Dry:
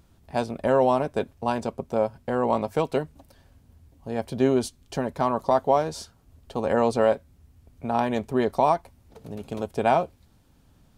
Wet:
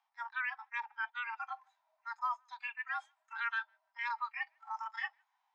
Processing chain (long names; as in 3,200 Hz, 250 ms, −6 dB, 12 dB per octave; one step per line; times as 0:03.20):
single-sideband voice off tune +240 Hz 170–2,700 Hz
reversed playback
downward compressor 5 to 1, threshold −34 dBFS, peak gain reduction 17.5 dB
reversed playback
treble cut that deepens with the level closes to 2,100 Hz, closed at −32.5 dBFS
harmonic and percussive parts rebalanced percussive −14 dB
change of speed 1.98×
on a send: feedback echo with a high-pass in the loop 154 ms, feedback 17%, high-pass 590 Hz, level −21 dB
on the sum: noise reduction from a noise print of the clip's start 16 dB
level +2.5 dB